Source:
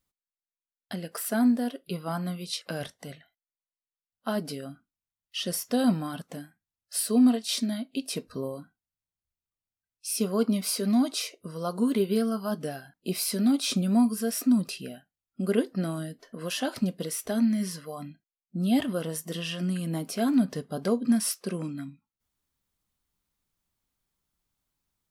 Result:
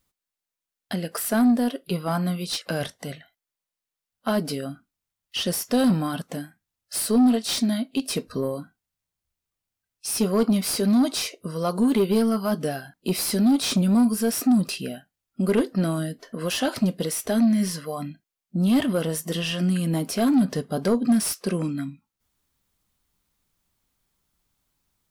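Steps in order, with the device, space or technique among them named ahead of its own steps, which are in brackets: saturation between pre-emphasis and de-emphasis (treble shelf 2.1 kHz +10 dB; saturation -21 dBFS, distortion -12 dB; treble shelf 2.1 kHz -10 dB); trim +7.5 dB

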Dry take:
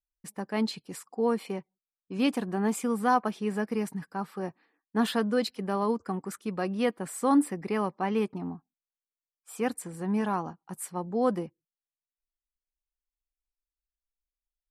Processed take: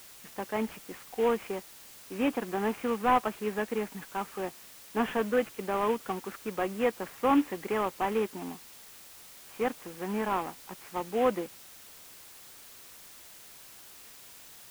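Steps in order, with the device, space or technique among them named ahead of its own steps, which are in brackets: army field radio (band-pass 310–3200 Hz; CVSD coder 16 kbps; white noise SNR 18 dB); trim +2 dB

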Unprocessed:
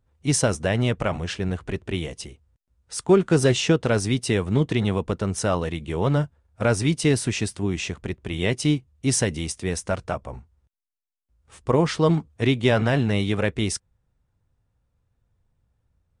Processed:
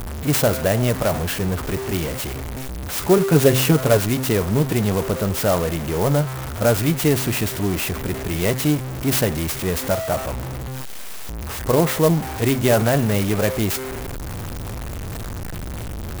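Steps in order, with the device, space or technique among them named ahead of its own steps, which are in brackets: dynamic bell 630 Hz, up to +5 dB, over -36 dBFS, Q 2.2; 3.17–3.97 s: comb 7.1 ms, depth 78%; treble shelf 8.4 kHz +2.5 dB; de-hum 130.5 Hz, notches 17; early CD player with a faulty converter (jump at every zero crossing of -23 dBFS; sampling jitter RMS 0.056 ms)

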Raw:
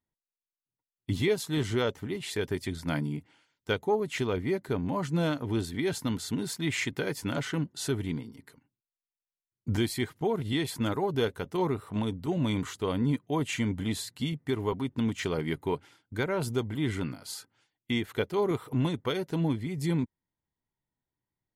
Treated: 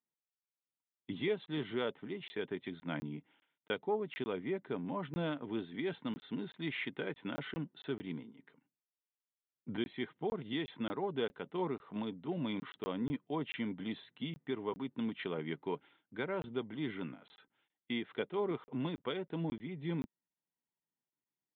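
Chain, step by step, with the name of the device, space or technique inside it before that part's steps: call with lost packets (high-pass 160 Hz 24 dB/octave; resampled via 8 kHz; lost packets of 20 ms random); trim -7.5 dB

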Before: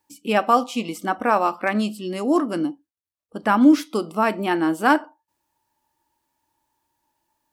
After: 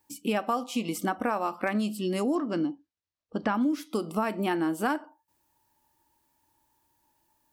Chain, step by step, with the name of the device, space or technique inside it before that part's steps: 2.35–3.55 s: low-pass 5.9 kHz 24 dB/octave; ASMR close-microphone chain (bass shelf 250 Hz +5 dB; compression 6:1, threshold -25 dBFS, peak gain reduction 16.5 dB; treble shelf 10 kHz +7 dB)

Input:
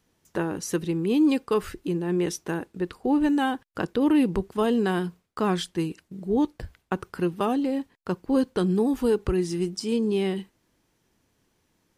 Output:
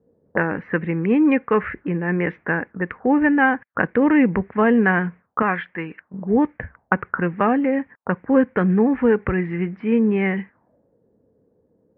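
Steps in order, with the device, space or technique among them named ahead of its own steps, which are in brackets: envelope filter bass rig (touch-sensitive low-pass 450–2200 Hz up, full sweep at -28.5 dBFS; cabinet simulation 76–2100 Hz, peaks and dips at 220 Hz +3 dB, 360 Hz -7 dB, 530 Hz +3 dB, 1.7 kHz +5 dB); 5.42–6.14 s: bass shelf 330 Hz -11.5 dB; trim +5.5 dB

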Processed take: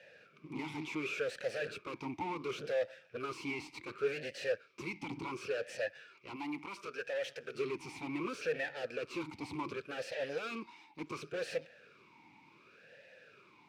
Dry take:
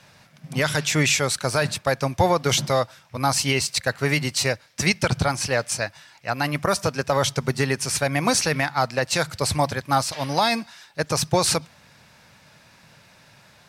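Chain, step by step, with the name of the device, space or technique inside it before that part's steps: talk box (valve stage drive 34 dB, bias 0.7; talking filter e-u 0.69 Hz); 6.36–7.55 s: bass shelf 460 Hz -10.5 dB; trim +10.5 dB

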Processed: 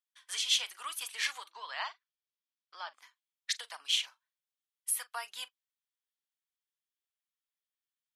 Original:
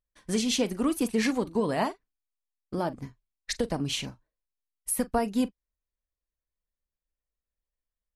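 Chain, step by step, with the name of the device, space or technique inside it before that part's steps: 1.51–2.94 s: elliptic band-pass 150–5600 Hz, stop band 40 dB; headphones lying on a table (high-pass 1.1 kHz 24 dB/octave; peaking EQ 3.3 kHz +8 dB 0.36 oct); trim -2 dB

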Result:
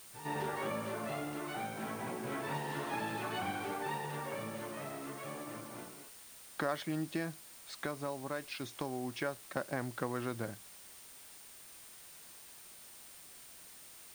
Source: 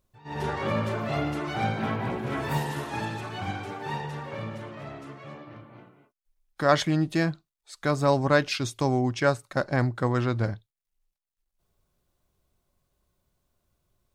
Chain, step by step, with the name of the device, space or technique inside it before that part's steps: medium wave at night (band-pass 190–4200 Hz; compression 4:1, threshold -41 dBFS, peak gain reduction 21.5 dB; tremolo 0.3 Hz, depth 37%; whistle 9 kHz -63 dBFS; white noise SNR 14 dB); trim +5 dB

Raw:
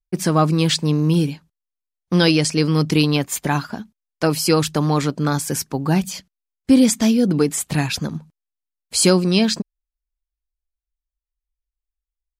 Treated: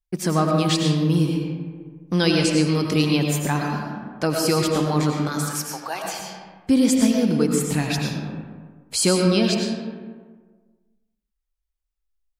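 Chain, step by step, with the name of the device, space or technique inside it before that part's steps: 5.27–6.03 s: high-pass 1.1 kHz -> 480 Hz 24 dB/octave; algorithmic reverb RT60 1.4 s, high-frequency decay 0.5×, pre-delay 60 ms, DRR 1 dB; parallel compression (in parallel at -1.5 dB: compression, threshold -32 dBFS, peak gain reduction 22 dB); on the sum: trim -5.5 dB

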